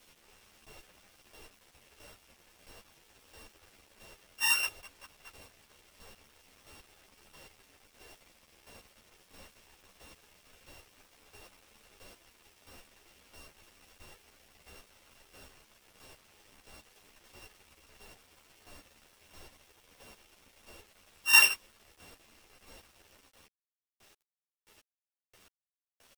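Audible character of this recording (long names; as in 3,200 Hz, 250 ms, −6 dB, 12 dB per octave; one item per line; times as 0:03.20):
a buzz of ramps at a fixed pitch in blocks of 16 samples
chopped level 1.5 Hz, depth 60%, duty 20%
a quantiser's noise floor 10 bits, dither none
a shimmering, thickened sound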